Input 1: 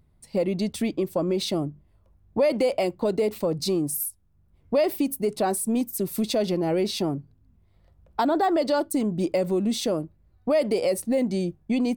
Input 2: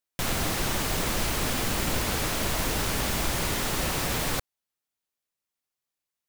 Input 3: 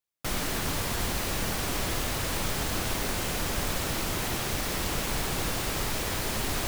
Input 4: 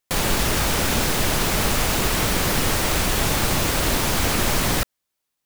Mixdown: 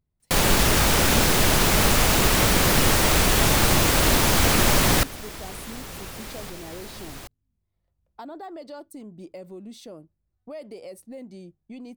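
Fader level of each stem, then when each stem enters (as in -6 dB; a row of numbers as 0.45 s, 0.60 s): -16.5 dB, -13.5 dB, -10.0 dB, +2.0 dB; 0.00 s, 2.10 s, 0.60 s, 0.20 s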